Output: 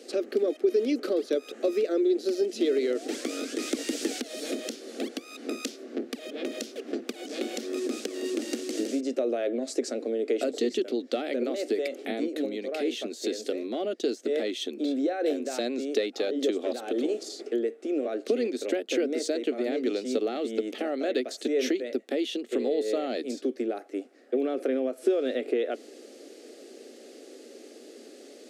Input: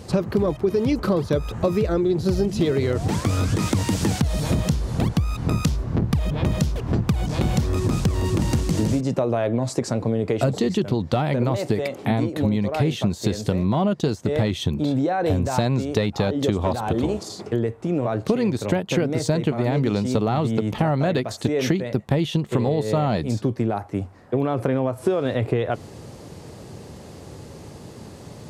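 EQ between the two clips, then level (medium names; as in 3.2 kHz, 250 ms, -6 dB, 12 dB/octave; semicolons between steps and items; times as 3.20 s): Chebyshev high-pass 240 Hz, order 5; treble shelf 11 kHz -9 dB; static phaser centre 400 Hz, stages 4; -2.0 dB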